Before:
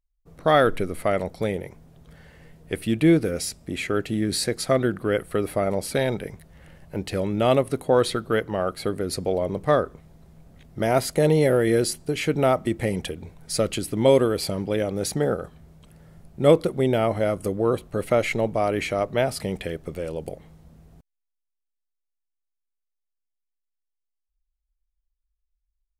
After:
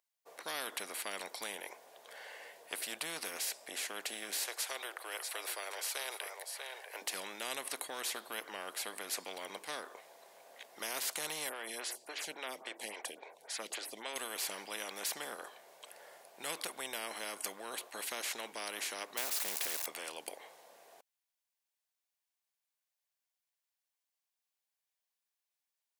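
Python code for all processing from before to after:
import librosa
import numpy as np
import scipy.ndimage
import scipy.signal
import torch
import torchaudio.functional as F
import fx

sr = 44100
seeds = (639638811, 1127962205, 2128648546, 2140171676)

y = fx.chain(x, sr, fx.highpass(hz=510.0, slope=24),
    fx.echo_single(ms=642, db=-15.5), at=(4.47, 7.02))
y = fx.chain(y, sr, fx.high_shelf(hz=8800.0, db=-11.0),
    fx.stagger_phaser(hz=3.6), at=(11.49, 14.16))
y = fx.chain(y, sr, fx.crossing_spikes(level_db=-27.0),
    fx.notch(hz=3100.0, q=14.0), at=(19.17, 19.86))
y = scipy.signal.sosfilt(scipy.signal.butter(4, 560.0, 'highpass', fs=sr, output='sos'), y)
y = fx.notch(y, sr, hz=1300.0, q=7.5)
y = fx.spectral_comp(y, sr, ratio=4.0)
y = y * librosa.db_to_amplitude(-6.0)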